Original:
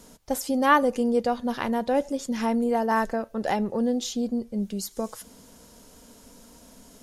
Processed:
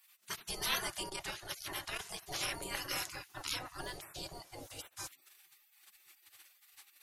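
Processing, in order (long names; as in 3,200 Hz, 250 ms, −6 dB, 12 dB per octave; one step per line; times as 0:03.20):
gate on every frequency bin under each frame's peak −30 dB weak
0:01.05–0:02.25: saturating transformer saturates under 360 Hz
level +8 dB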